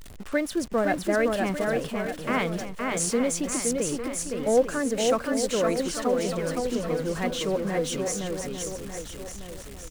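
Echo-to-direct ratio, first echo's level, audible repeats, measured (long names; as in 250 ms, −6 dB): −1.5 dB, −3.5 dB, 5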